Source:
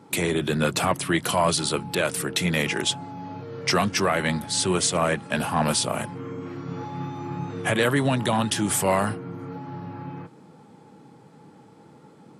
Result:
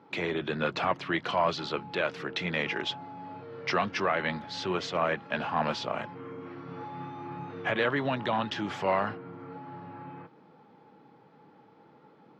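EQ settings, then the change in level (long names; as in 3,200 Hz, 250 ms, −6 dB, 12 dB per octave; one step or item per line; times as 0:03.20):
moving average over 5 samples
high-frequency loss of the air 140 metres
low-shelf EQ 280 Hz −12 dB
−2.0 dB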